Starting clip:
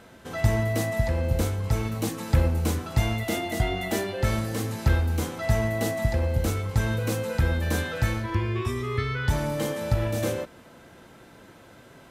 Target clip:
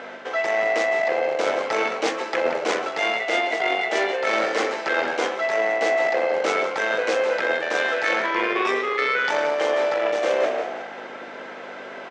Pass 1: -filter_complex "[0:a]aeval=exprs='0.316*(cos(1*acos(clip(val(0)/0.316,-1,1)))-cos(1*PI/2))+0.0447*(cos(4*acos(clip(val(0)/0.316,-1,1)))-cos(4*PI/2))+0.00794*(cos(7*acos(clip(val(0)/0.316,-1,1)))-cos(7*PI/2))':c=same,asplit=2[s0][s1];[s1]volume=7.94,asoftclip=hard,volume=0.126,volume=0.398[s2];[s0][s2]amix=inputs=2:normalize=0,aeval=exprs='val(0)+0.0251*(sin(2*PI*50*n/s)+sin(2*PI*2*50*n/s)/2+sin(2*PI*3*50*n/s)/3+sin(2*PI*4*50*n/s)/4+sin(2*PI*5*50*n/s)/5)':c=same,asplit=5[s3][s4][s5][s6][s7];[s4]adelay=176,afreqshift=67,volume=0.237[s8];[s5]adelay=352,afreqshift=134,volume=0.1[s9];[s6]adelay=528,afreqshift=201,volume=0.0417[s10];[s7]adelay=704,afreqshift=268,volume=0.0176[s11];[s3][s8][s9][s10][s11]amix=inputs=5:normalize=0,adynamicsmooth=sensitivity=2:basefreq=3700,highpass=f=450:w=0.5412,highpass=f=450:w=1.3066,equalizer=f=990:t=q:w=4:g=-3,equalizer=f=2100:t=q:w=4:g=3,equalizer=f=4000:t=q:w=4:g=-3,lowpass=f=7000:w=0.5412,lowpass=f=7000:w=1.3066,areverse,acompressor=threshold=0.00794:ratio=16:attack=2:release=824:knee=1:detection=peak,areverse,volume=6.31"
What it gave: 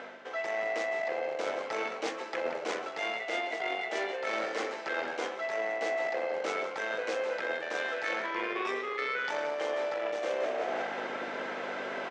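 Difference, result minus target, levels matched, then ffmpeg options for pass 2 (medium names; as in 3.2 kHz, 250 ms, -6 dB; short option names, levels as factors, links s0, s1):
compression: peak gain reduction +11 dB
-filter_complex "[0:a]aeval=exprs='0.316*(cos(1*acos(clip(val(0)/0.316,-1,1)))-cos(1*PI/2))+0.0447*(cos(4*acos(clip(val(0)/0.316,-1,1)))-cos(4*PI/2))+0.00794*(cos(7*acos(clip(val(0)/0.316,-1,1)))-cos(7*PI/2))':c=same,asplit=2[s0][s1];[s1]volume=7.94,asoftclip=hard,volume=0.126,volume=0.398[s2];[s0][s2]amix=inputs=2:normalize=0,aeval=exprs='val(0)+0.0251*(sin(2*PI*50*n/s)+sin(2*PI*2*50*n/s)/2+sin(2*PI*3*50*n/s)/3+sin(2*PI*4*50*n/s)/4+sin(2*PI*5*50*n/s)/5)':c=same,asplit=5[s3][s4][s5][s6][s7];[s4]adelay=176,afreqshift=67,volume=0.237[s8];[s5]adelay=352,afreqshift=134,volume=0.1[s9];[s6]adelay=528,afreqshift=201,volume=0.0417[s10];[s7]adelay=704,afreqshift=268,volume=0.0176[s11];[s3][s8][s9][s10][s11]amix=inputs=5:normalize=0,adynamicsmooth=sensitivity=2:basefreq=3700,highpass=f=450:w=0.5412,highpass=f=450:w=1.3066,equalizer=f=990:t=q:w=4:g=-3,equalizer=f=2100:t=q:w=4:g=3,equalizer=f=4000:t=q:w=4:g=-3,lowpass=f=7000:w=0.5412,lowpass=f=7000:w=1.3066,areverse,acompressor=threshold=0.0299:ratio=16:attack=2:release=824:knee=1:detection=peak,areverse,volume=6.31"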